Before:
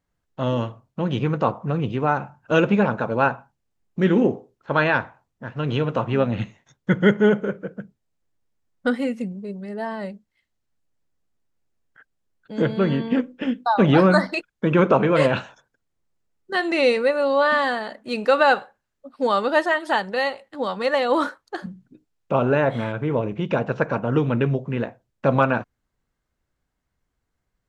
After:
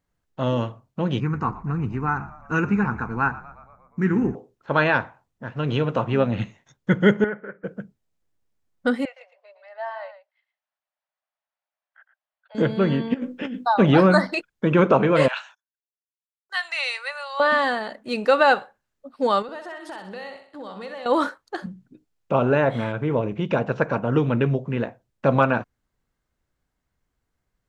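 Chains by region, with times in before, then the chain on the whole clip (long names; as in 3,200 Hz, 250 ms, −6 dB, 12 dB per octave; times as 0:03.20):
0:01.20–0:04.35: phaser with its sweep stopped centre 1,400 Hz, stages 4 + echo with shifted repeats 118 ms, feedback 61%, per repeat −62 Hz, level −18 dB
0:07.24–0:07.64: transistor ladder low-pass 2,000 Hz, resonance 65% + low-shelf EQ 170 Hz −10.5 dB
0:09.05–0:12.55: Butterworth high-pass 580 Hz 72 dB per octave + high-frequency loss of the air 250 metres + single-tap delay 112 ms −11 dB
0:13.14–0:13.67: compressor whose output falls as the input rises −30 dBFS + double-tracking delay 16 ms −14 dB
0:15.28–0:17.40: noise gate −51 dBFS, range −31 dB + Bessel high-pass filter 1,300 Hz, order 6
0:19.42–0:21.06: downward expander −36 dBFS + downward compressor, threshold −34 dBFS + flutter between parallel walls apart 10.8 metres, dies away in 0.52 s
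whole clip: no processing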